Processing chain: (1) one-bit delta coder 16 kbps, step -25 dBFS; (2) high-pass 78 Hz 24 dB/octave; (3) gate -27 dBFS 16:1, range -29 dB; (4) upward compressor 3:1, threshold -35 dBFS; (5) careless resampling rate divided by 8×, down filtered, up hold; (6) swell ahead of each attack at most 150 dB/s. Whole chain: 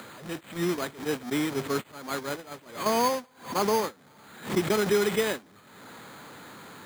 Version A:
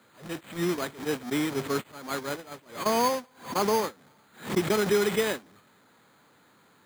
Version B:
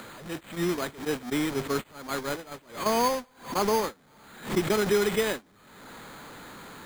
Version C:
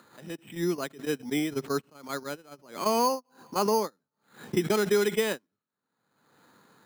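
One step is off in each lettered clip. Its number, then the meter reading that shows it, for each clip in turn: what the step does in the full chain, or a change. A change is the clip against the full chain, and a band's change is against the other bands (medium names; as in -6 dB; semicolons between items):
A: 4, momentary loudness spread change -8 LU; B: 2, momentary loudness spread change -1 LU; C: 1, 2 kHz band -1.5 dB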